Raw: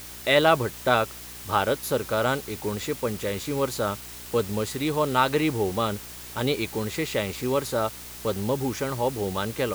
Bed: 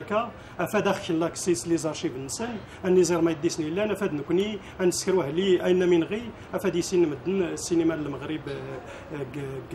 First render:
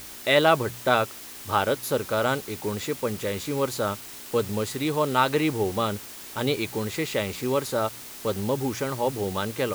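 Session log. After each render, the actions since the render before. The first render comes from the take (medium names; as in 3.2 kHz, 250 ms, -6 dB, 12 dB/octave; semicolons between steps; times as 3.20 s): de-hum 60 Hz, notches 3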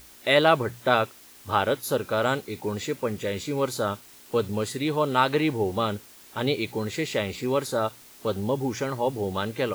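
noise print and reduce 9 dB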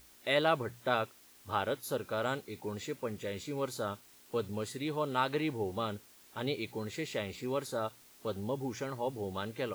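trim -9.5 dB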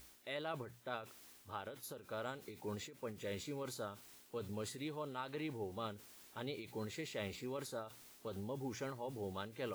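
reverse; compression 6:1, threshold -39 dBFS, peak gain reduction 15 dB; reverse; endings held to a fixed fall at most 120 dB/s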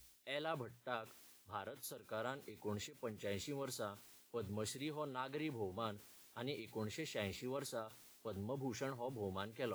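three bands expanded up and down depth 40%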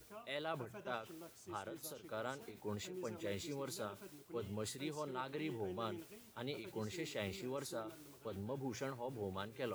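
add bed -28.5 dB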